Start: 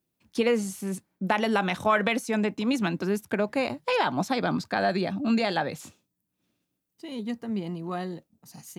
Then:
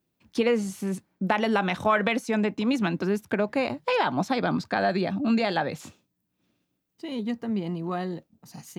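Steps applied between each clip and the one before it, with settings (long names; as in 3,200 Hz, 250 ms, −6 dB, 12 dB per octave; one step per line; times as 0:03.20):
parametric band 11,000 Hz −7.5 dB 1.5 octaves
in parallel at −2 dB: downward compressor, threshold −32 dBFS, peak gain reduction 13.5 dB
on the sum: level −1 dB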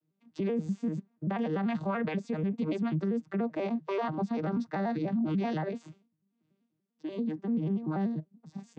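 vocoder with an arpeggio as carrier major triad, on D#3, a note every 97 ms
brickwall limiter −23.5 dBFS, peak gain reduction 11 dB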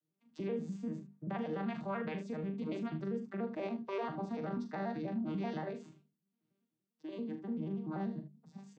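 mains-hum notches 50/100/150/200/250/300/350/400 Hz
loudspeakers that aren't time-aligned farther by 14 metres −8 dB, 26 metres −12 dB
level −7 dB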